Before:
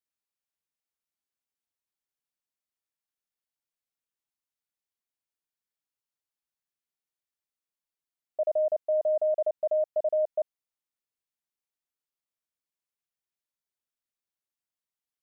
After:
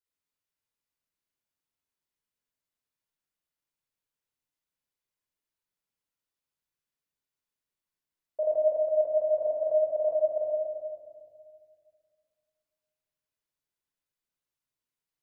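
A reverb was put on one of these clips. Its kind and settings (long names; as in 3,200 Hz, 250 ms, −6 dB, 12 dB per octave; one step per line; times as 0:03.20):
rectangular room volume 3,100 cubic metres, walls mixed, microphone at 4.9 metres
level −5 dB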